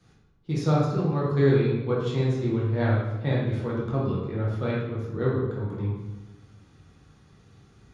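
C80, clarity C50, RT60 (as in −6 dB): 3.5 dB, 0.5 dB, 1.1 s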